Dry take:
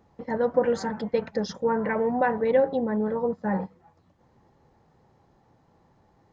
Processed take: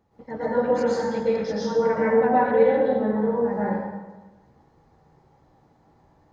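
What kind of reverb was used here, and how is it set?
plate-style reverb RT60 1.2 s, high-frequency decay 0.75×, pre-delay 105 ms, DRR -9 dB; trim -7 dB

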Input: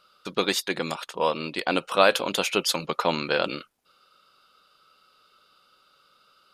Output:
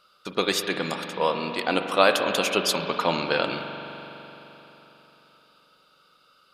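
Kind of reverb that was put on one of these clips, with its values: spring tank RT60 3.8 s, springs 42 ms, chirp 30 ms, DRR 5.5 dB

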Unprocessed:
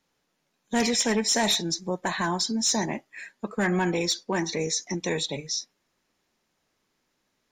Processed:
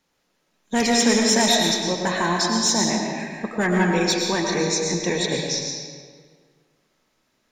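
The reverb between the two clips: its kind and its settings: algorithmic reverb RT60 1.8 s, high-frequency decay 0.75×, pre-delay 70 ms, DRR 0 dB; trim +3 dB

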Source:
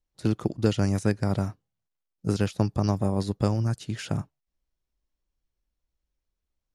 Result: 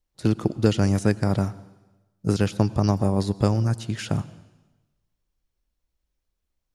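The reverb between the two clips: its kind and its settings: plate-style reverb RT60 1.1 s, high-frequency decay 1×, pre-delay 85 ms, DRR 18.5 dB; trim +3.5 dB

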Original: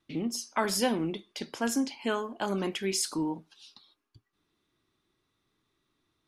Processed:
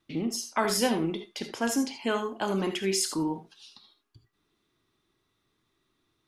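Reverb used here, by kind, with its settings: gated-style reverb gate 100 ms rising, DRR 7.5 dB; trim +1.5 dB

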